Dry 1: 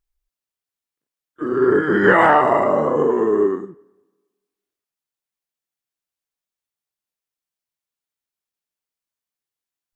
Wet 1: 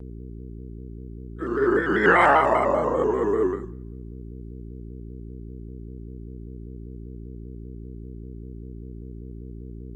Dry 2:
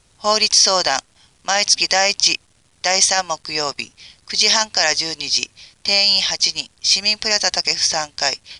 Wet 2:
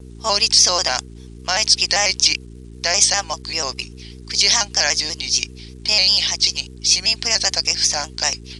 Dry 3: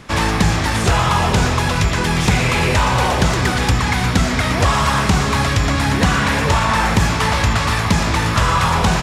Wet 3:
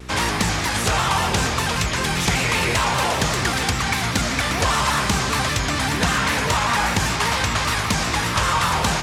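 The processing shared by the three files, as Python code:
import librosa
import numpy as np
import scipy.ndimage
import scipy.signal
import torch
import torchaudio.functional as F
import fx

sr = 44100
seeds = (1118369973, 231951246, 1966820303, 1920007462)

y = fx.dmg_buzz(x, sr, base_hz=60.0, harmonics=7, level_db=-29.0, tilt_db=-6, odd_only=False)
y = fx.tilt_eq(y, sr, slope=1.5)
y = fx.vibrato_shape(y, sr, shape='square', rate_hz=5.1, depth_cents=100.0)
y = F.gain(torch.from_numpy(y), -3.5).numpy()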